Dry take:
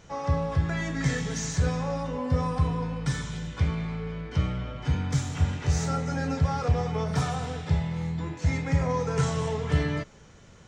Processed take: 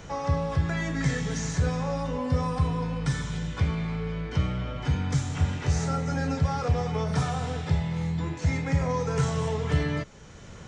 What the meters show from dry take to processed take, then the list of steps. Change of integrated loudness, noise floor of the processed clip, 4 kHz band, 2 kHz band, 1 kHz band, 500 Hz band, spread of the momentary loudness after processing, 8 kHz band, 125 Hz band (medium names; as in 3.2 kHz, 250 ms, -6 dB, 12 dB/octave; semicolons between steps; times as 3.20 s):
+0.5 dB, -44 dBFS, 0.0 dB, +0.5 dB, +0.5 dB, 0.0 dB, 4 LU, -1.5 dB, +0.5 dB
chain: resampled via 22.05 kHz; three bands compressed up and down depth 40%